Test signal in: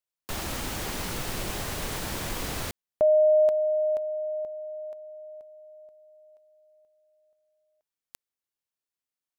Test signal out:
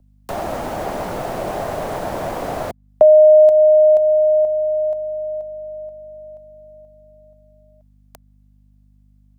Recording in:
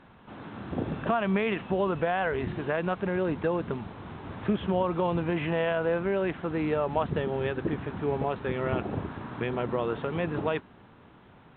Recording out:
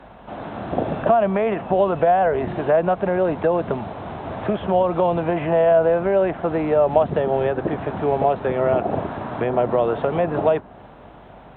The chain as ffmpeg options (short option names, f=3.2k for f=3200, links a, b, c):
-filter_complex "[0:a]aeval=exprs='val(0)+0.00126*(sin(2*PI*50*n/s)+sin(2*PI*2*50*n/s)/2+sin(2*PI*3*50*n/s)/3+sin(2*PI*4*50*n/s)/4+sin(2*PI*5*50*n/s)/5)':c=same,acrossover=split=120|490|1700[a][b][c][d];[a]acompressor=threshold=-43dB:ratio=4[e];[b]acompressor=threshold=-31dB:ratio=4[f];[c]acompressor=threshold=-33dB:ratio=4[g];[d]acompressor=threshold=-49dB:ratio=4[h];[e][f][g][h]amix=inputs=4:normalize=0,equalizer=f=660:w=1.9:g=12.5,volume=6.5dB"